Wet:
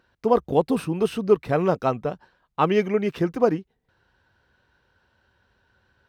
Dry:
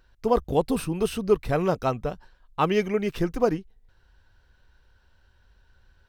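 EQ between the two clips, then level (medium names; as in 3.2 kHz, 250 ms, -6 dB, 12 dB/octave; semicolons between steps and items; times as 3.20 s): high-pass 130 Hz 12 dB/octave; treble shelf 4.2 kHz -10 dB; +3.0 dB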